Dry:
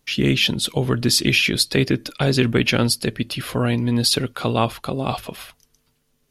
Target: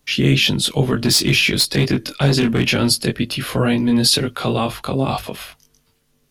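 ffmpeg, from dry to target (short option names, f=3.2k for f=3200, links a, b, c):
-filter_complex "[0:a]acrossover=split=160|4400[a][b][c];[b]alimiter=limit=-12.5dB:level=0:latency=1:release=10[d];[a][d][c]amix=inputs=3:normalize=0,asplit=3[e][f][g];[e]afade=t=out:st=0.94:d=0.02[h];[f]volume=12dB,asoftclip=hard,volume=-12dB,afade=t=in:st=0.94:d=0.02,afade=t=out:st=2.73:d=0.02[i];[g]afade=t=in:st=2.73:d=0.02[j];[h][i][j]amix=inputs=3:normalize=0,flanger=delay=20:depth=2.5:speed=2.1,volume=7dB"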